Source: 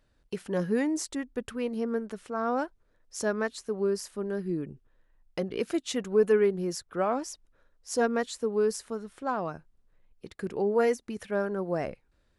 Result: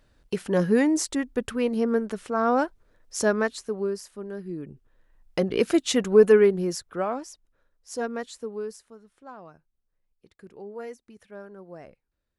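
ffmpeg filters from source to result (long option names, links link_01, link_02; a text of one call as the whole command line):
ffmpeg -i in.wav -af "volume=18dB,afade=type=out:start_time=3.26:duration=0.76:silence=0.316228,afade=type=in:start_time=4.55:duration=1.01:silence=0.266073,afade=type=out:start_time=6.09:duration=1.19:silence=0.251189,afade=type=out:start_time=8.39:duration=0.47:silence=0.354813" out.wav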